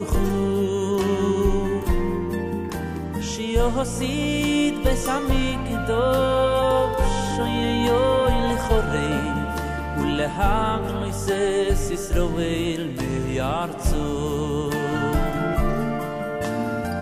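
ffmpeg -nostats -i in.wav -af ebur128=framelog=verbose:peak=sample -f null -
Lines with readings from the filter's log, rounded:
Integrated loudness:
  I:         -23.2 LUFS
  Threshold: -33.2 LUFS
Loudness range:
  LRA:         3.6 LU
  Threshold: -43.1 LUFS
  LRA low:   -24.7 LUFS
  LRA high:  -21.1 LUFS
Sample peak:
  Peak:       -6.5 dBFS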